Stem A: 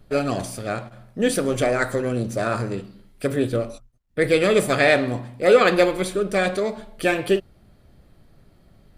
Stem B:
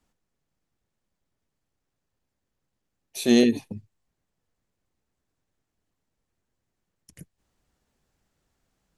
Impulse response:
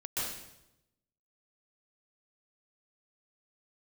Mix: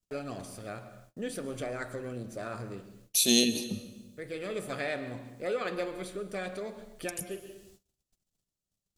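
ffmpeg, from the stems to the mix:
-filter_complex "[0:a]volume=-12dB,asplit=2[a][b];[b]volume=-19dB[c];[1:a]equalizer=f=190:t=o:w=0.22:g=11,aexciter=amount=7.3:drive=2.4:freq=2.7k,volume=1dB,asplit=3[d][e][f];[e]volume=-20dB[g];[f]apad=whole_len=395583[h];[a][h]sidechaincompress=threshold=-35dB:ratio=8:attack=16:release=696[i];[2:a]atrim=start_sample=2205[j];[c][g]amix=inputs=2:normalize=0[k];[k][j]afir=irnorm=-1:irlink=0[l];[i][d][l]amix=inputs=3:normalize=0,agate=range=-30dB:threshold=-55dB:ratio=16:detection=peak,acompressor=threshold=-40dB:ratio=1.5"

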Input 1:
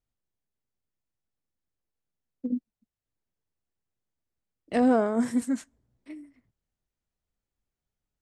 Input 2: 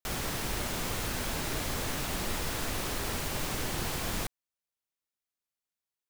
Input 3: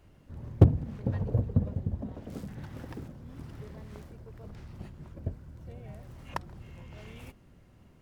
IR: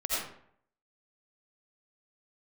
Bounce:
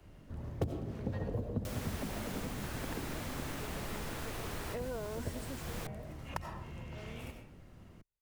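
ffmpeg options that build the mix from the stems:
-filter_complex "[0:a]aecho=1:1:2:0.57,acompressor=threshold=-23dB:ratio=6,volume=-11.5dB,asplit=2[a][b];[1:a]adelay=1600,volume=-6.5dB[c];[2:a]volume=-0.5dB,asplit=2[d][e];[e]volume=-10dB[f];[b]apad=whole_len=339460[g];[c][g]sidechaincompress=threshold=-44dB:ratio=8:attack=16:release=704[h];[3:a]atrim=start_sample=2205[i];[f][i]afir=irnorm=-1:irlink=0[j];[a][h][d][j]amix=inputs=4:normalize=0,acrossover=split=88|180|2900|6200[k][l][m][n][o];[k]acompressor=threshold=-41dB:ratio=4[p];[l]acompressor=threshold=-50dB:ratio=4[q];[m]acompressor=threshold=-37dB:ratio=4[r];[n]acompressor=threshold=-57dB:ratio=4[s];[o]acompressor=threshold=-50dB:ratio=4[t];[p][q][r][s][t]amix=inputs=5:normalize=0"

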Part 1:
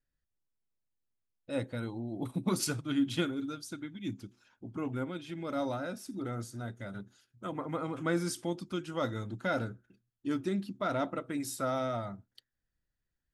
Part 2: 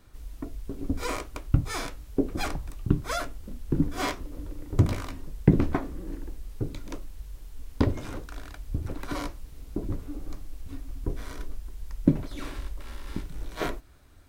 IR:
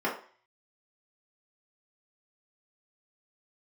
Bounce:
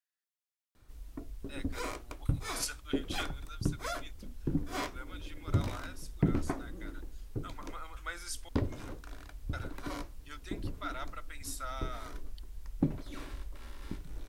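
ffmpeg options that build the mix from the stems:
-filter_complex "[0:a]highpass=1.3k,volume=-1.5dB,asplit=3[a][b][c];[a]atrim=end=8.49,asetpts=PTS-STARTPTS,afade=t=out:st=8.486:d=0.004:c=hsin[d];[b]atrim=start=8.49:end=9.53,asetpts=PTS-STARTPTS,volume=0[e];[c]atrim=start=9.53,asetpts=PTS-STARTPTS,afade=t=in:d=0.004:c=hsin[f];[d][e][f]concat=n=3:v=0:a=1[g];[1:a]acontrast=85,adelay=750,volume=-14dB[h];[g][h]amix=inputs=2:normalize=0"

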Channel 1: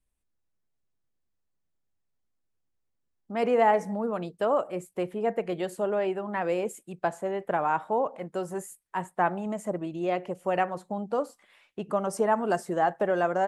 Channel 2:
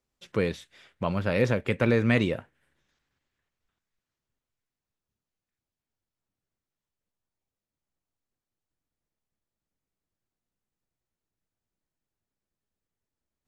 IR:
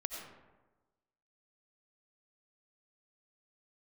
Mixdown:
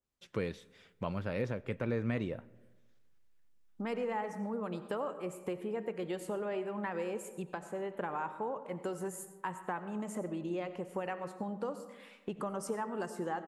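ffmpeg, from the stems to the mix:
-filter_complex "[0:a]equalizer=f=670:t=o:w=0.21:g=-12,acompressor=threshold=-39dB:ratio=4,adelay=500,volume=-1dB,asplit=2[a][b];[b]volume=-3.5dB[c];[1:a]adynamicequalizer=threshold=0.00708:dfrequency=1800:dqfactor=0.7:tfrequency=1800:tqfactor=0.7:attack=5:release=100:ratio=0.375:range=4:mode=cutabove:tftype=highshelf,volume=-7.5dB,asplit=2[d][e];[e]volume=-20dB[f];[2:a]atrim=start_sample=2205[g];[c][f]amix=inputs=2:normalize=0[h];[h][g]afir=irnorm=-1:irlink=0[i];[a][d][i]amix=inputs=3:normalize=0,alimiter=limit=-22.5dB:level=0:latency=1:release=475"

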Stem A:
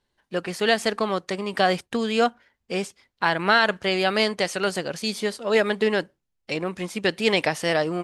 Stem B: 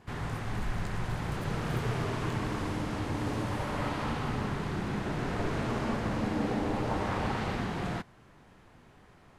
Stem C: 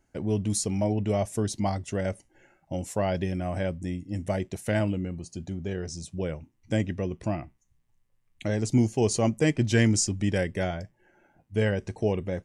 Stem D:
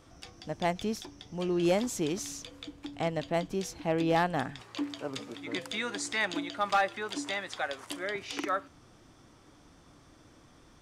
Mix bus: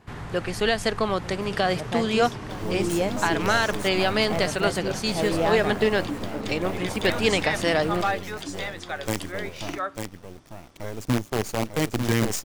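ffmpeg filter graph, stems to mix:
-filter_complex "[0:a]alimiter=limit=-10dB:level=0:latency=1:release=154,volume=0dB,asplit=2[a][b];[b]volume=-20.5dB[c];[1:a]acompressor=threshold=-34dB:ratio=6,volume=2dB[d];[2:a]acrusher=bits=4:dc=4:mix=0:aa=0.000001,adelay=2350,volume=-3dB,asplit=2[e][f];[f]volume=-6dB[g];[3:a]adelay=1300,volume=1dB[h];[c][g]amix=inputs=2:normalize=0,aecho=0:1:896:1[i];[a][d][e][h][i]amix=inputs=5:normalize=0"

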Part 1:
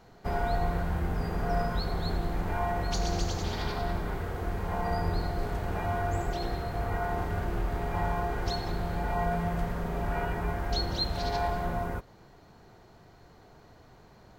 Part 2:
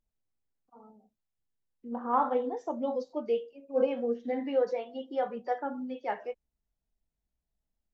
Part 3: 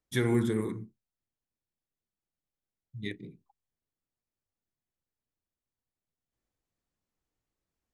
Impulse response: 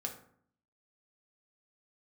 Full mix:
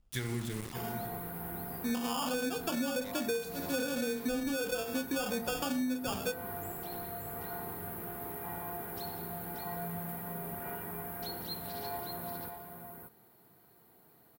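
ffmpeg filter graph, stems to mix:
-filter_complex "[0:a]aexciter=amount=15.1:drive=7.6:freq=9.3k,highpass=250,bandreject=f=580:w=13,adelay=500,volume=-10.5dB,asplit=2[a][b];[b]volume=-6.5dB[c];[1:a]alimiter=level_in=1dB:limit=-24dB:level=0:latency=1:release=34,volume=-1dB,acrusher=samples=22:mix=1:aa=0.000001,volume=2.5dB,asplit=2[d][e];[e]volume=-4dB[f];[2:a]equalizer=f=190:w=0.4:g=-5.5,aeval=exprs='val(0)*gte(abs(val(0)),0.0168)':c=same,volume=-9dB,asplit=2[g][h];[h]volume=-9.5dB[i];[d][g]amix=inputs=2:normalize=0,highshelf=f=2.1k:g=11,alimiter=limit=-17dB:level=0:latency=1:release=36,volume=0dB[j];[3:a]atrim=start_sample=2205[k];[f][k]afir=irnorm=-1:irlink=0[l];[c][i]amix=inputs=2:normalize=0,aecho=0:1:581:1[m];[a][j][l][m]amix=inputs=4:normalize=0,bass=f=250:g=10,treble=f=4k:g=-1,acompressor=threshold=-30dB:ratio=16"

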